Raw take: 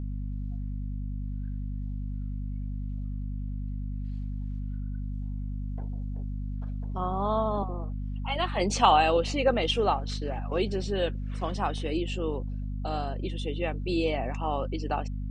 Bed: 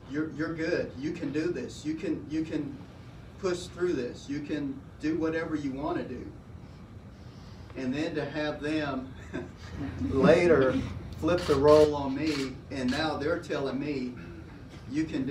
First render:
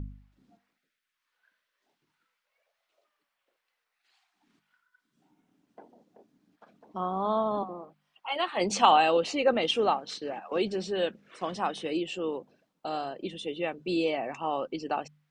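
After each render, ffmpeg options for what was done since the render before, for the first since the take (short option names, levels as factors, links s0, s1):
-af "bandreject=f=50:t=h:w=4,bandreject=f=100:t=h:w=4,bandreject=f=150:t=h:w=4,bandreject=f=200:t=h:w=4,bandreject=f=250:t=h:w=4"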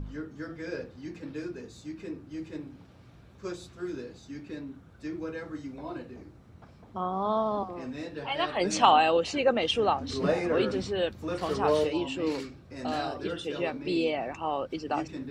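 -filter_complex "[1:a]volume=0.447[s0];[0:a][s0]amix=inputs=2:normalize=0"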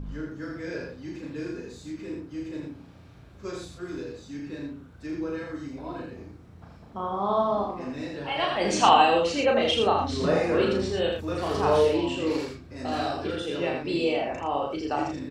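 -filter_complex "[0:a]asplit=2[s0][s1];[s1]adelay=35,volume=0.708[s2];[s0][s2]amix=inputs=2:normalize=0,aecho=1:1:81:0.631"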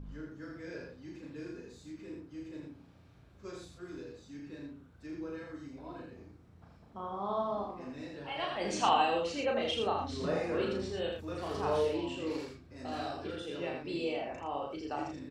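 -af "volume=0.335"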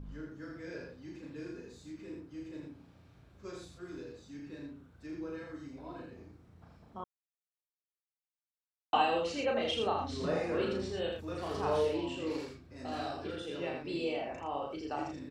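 -filter_complex "[0:a]asplit=3[s0][s1][s2];[s0]atrim=end=7.04,asetpts=PTS-STARTPTS,afade=t=out:st=7.036:d=0.004:c=hsin[s3];[s1]atrim=start=7.04:end=8.93,asetpts=PTS-STARTPTS,volume=0[s4];[s2]atrim=start=8.93,asetpts=PTS-STARTPTS,afade=t=in:d=0.004:c=hsin[s5];[s3][s4][s5]concat=n=3:v=0:a=1"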